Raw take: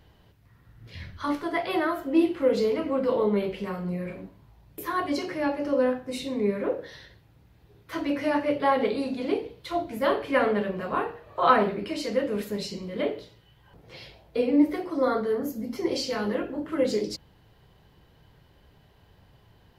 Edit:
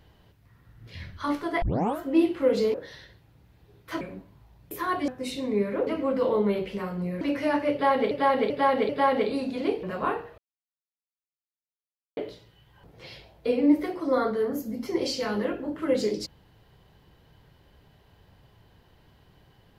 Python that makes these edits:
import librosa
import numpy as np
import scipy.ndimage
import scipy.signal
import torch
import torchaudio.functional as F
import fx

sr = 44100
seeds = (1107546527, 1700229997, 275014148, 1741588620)

y = fx.edit(x, sr, fx.tape_start(start_s=1.62, length_s=0.37),
    fx.swap(start_s=2.74, length_s=1.34, other_s=6.75, other_length_s=1.27),
    fx.cut(start_s=5.15, length_s=0.81),
    fx.repeat(start_s=8.53, length_s=0.39, count=4),
    fx.cut(start_s=9.47, length_s=1.26),
    fx.silence(start_s=11.28, length_s=1.79), tone=tone)